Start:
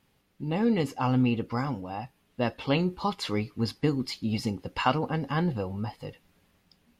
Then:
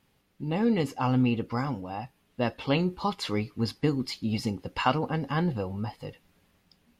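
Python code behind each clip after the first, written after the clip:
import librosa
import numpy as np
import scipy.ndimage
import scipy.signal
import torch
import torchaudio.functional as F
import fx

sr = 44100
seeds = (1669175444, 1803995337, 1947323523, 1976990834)

y = x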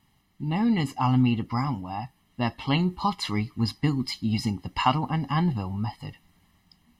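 y = x + 0.79 * np.pad(x, (int(1.0 * sr / 1000.0), 0))[:len(x)]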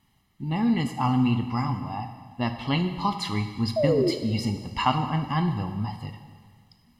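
y = fx.spec_paint(x, sr, seeds[0], shape='fall', start_s=3.76, length_s=0.35, low_hz=320.0, high_hz=670.0, level_db=-22.0)
y = fx.rev_plate(y, sr, seeds[1], rt60_s=1.7, hf_ratio=0.9, predelay_ms=0, drr_db=7.0)
y = y * librosa.db_to_amplitude(-1.0)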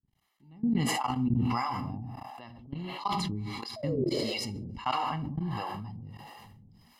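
y = fx.level_steps(x, sr, step_db=22)
y = fx.harmonic_tremolo(y, sr, hz=1.5, depth_pct=100, crossover_hz=440.0)
y = fx.sustainer(y, sr, db_per_s=20.0)
y = y * librosa.db_to_amplitude(-2.5)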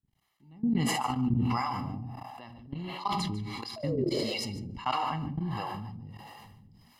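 y = x + 10.0 ** (-16.5 / 20.0) * np.pad(x, (int(147 * sr / 1000.0), 0))[:len(x)]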